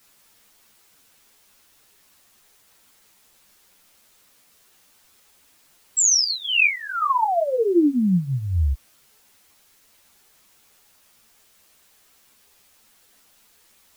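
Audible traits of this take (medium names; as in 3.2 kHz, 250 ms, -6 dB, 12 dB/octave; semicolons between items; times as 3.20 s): phasing stages 4, 0.31 Hz, lowest notch 160–3100 Hz; a quantiser's noise floor 10-bit, dither triangular; a shimmering, thickened sound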